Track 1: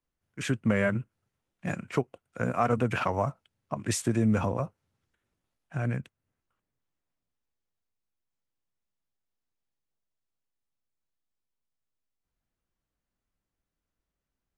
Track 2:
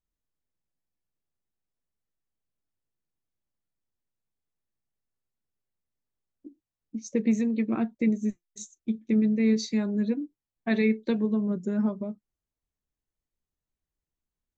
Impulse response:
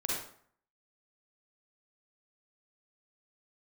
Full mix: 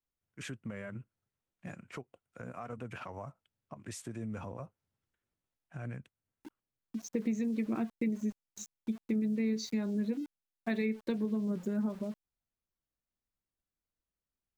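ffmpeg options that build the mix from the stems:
-filter_complex "[0:a]alimiter=limit=0.0708:level=0:latency=1:release=216,volume=0.355[s0];[1:a]aeval=exprs='val(0)*gte(abs(val(0)),0.00562)':c=same,volume=0.631[s1];[s0][s1]amix=inputs=2:normalize=0,acompressor=threshold=0.0355:ratio=4"

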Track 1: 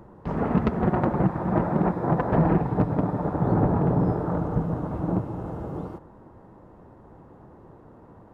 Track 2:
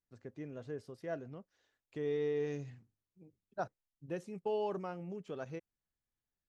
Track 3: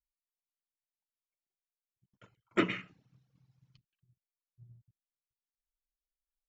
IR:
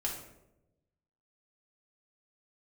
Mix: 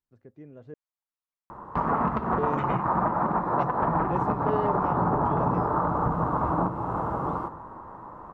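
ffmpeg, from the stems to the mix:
-filter_complex "[0:a]equalizer=f=1100:w=1.4:g=6.5,acompressor=threshold=0.0891:ratio=6,adelay=1500,volume=0.75,asplit=2[s0][s1];[s1]volume=0.282[s2];[1:a]lowpass=f=1100:p=1,dynaudnorm=f=210:g=11:m=3.55,asoftclip=type=tanh:threshold=0.0794,volume=0.841,asplit=3[s3][s4][s5];[s3]atrim=end=0.74,asetpts=PTS-STARTPTS,afade=t=out:st=0.736:d=0.004:c=hsin[s6];[s4]atrim=start=0.74:end=2.38,asetpts=PTS-STARTPTS,volume=0[s7];[s5]atrim=start=2.38,asetpts=PTS-STARTPTS,afade=t=in:d=0.004:c=hsin[s8];[s6][s7][s8]concat=n=3:v=0:a=1[s9];[2:a]volume=0.422[s10];[s0][s10]amix=inputs=2:normalize=0,equalizer=f=1100:w=1.1:g=13,alimiter=limit=0.158:level=0:latency=1:release=291,volume=1[s11];[3:a]atrim=start_sample=2205[s12];[s2][s12]afir=irnorm=-1:irlink=0[s13];[s9][s11][s13]amix=inputs=3:normalize=0"

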